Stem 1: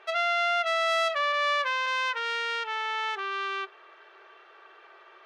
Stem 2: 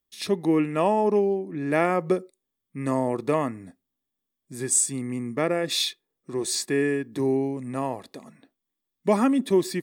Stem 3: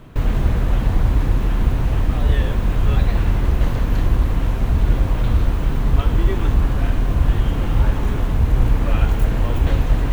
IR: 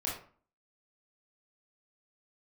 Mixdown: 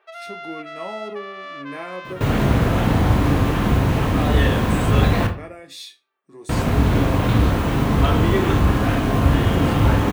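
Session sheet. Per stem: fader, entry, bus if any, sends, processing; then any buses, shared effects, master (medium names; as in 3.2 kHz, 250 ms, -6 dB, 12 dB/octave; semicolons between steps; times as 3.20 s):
-8.0 dB, 0.00 s, no send, echo send -14.5 dB, treble shelf 3.3 kHz -8 dB
-2.5 dB, 0.00 s, send -14.5 dB, no echo send, chord resonator F#2 minor, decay 0.21 s; de-esser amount 65%
+3.0 dB, 2.05 s, muted 5.27–6.49 s, send -4 dB, no echo send, none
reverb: on, RT60 0.45 s, pre-delay 20 ms
echo: feedback delay 510 ms, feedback 45%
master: high-pass 120 Hz 12 dB/octave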